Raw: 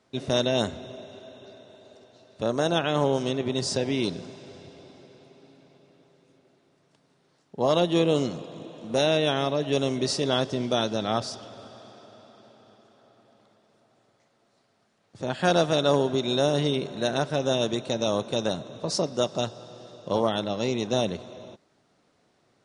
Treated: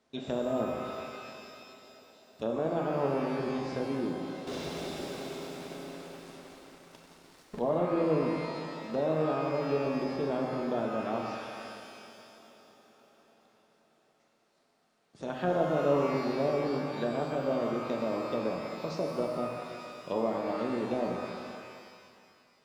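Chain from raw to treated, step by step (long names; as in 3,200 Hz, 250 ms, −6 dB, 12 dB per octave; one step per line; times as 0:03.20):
parametric band 110 Hz −9.5 dB 0.6 octaves
treble cut that deepens with the level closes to 910 Hz, closed at −22.5 dBFS
0:04.47–0:07.59: leveller curve on the samples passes 5
reverb with rising layers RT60 2.1 s, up +12 semitones, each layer −8 dB, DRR 1 dB
level −6.5 dB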